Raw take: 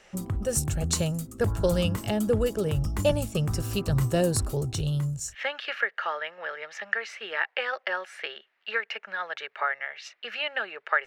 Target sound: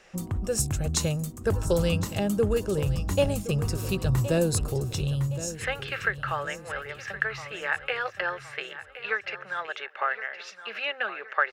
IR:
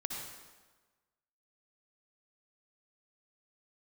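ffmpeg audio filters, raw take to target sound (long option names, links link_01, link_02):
-af "aecho=1:1:1025|2050|3075|4100:0.211|0.0951|0.0428|0.0193,asetrate=42336,aresample=44100"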